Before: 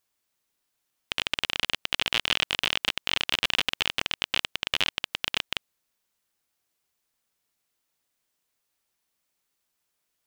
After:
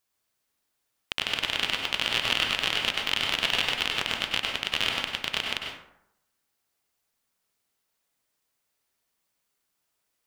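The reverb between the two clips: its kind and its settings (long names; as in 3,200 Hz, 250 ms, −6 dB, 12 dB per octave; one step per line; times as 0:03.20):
dense smooth reverb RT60 0.78 s, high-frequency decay 0.5×, pre-delay 85 ms, DRR 0 dB
level −1.5 dB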